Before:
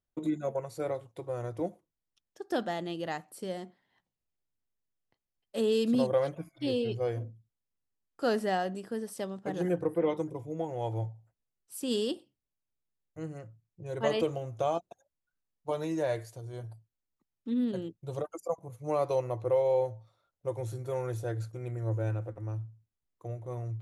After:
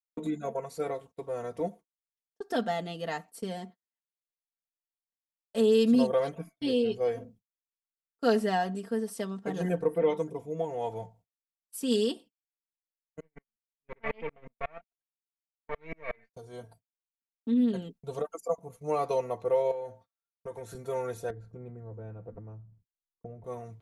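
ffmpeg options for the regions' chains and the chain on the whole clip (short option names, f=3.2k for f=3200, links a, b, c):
-filter_complex "[0:a]asettb=1/sr,asplit=3[a][b][c];[a]atrim=end=13.204[d];[b]atrim=start=13.2:end=16.34,asetpts=PTS-STARTPTS,afade=t=in:d=0.004:c=qsin,afade=t=out:st=3.136:d=0.004:c=qsin,aeval=exprs='if(lt(val(0),0),0.251*val(0),val(0))':c=same,lowpass=f=2.2k:t=q:w=8.7,aeval=exprs='val(0)*pow(10,-38*if(lt(mod(-5.5*n/s,1),2*abs(-5.5)/1000),1-mod(-5.5*n/s,1)/(2*abs(-5.5)/1000),(mod(-5.5*n/s,1)-2*abs(-5.5)/1000)/(1-2*abs(-5.5)/1000))/20)':c=same[e];[c]atrim=start=16.336[f];[d][e]acrossfade=d=0.004:c1=hsin:c2=qsin[g];[g][f]acrossfade=d=0.004:c1=qsin:c2=hsin,asettb=1/sr,asplit=3[h][i][j];[h]atrim=end=19.714[k];[i]atrim=start=19.71:end=20.75,asetpts=PTS-STARTPTS,afade=t=in:d=0.004:c=qsin,afade=t=out:st=1.036:d=0.004:c=qsin,highpass=68,equalizer=f=1.6k:w=3.3:g=8.5,acompressor=threshold=-36dB:ratio=4:attack=3.2:release=140:knee=1:detection=peak[l];[j]atrim=start=20.746[m];[k][l]acrossfade=d=0.004:c1=hsin:c2=qsin[n];[n][m]acrossfade=d=0.004:c1=qsin:c2=hsin,asettb=1/sr,asplit=3[o][p][q];[o]atrim=end=21.304[r];[p]atrim=start=21.3:end=23.44,asetpts=PTS-STARTPTS,afade=t=in:d=0.004:c=qsin,afade=t=out:st=2.136:d=0.004:c=qsin,lowpass=f=1k:p=1,lowshelf=f=310:g=11.5,acompressor=threshold=-40dB:ratio=2:attack=3.2:release=140:knee=1:detection=peak[s];[q]atrim=start=23.436[t];[r][s]acrossfade=d=0.004:c1=hsin:c2=qsin[u];[u][t]acrossfade=d=0.004:c1=qsin:c2=hsin,agate=range=-35dB:threshold=-49dB:ratio=16:detection=peak,aecho=1:1:4.4:0.76"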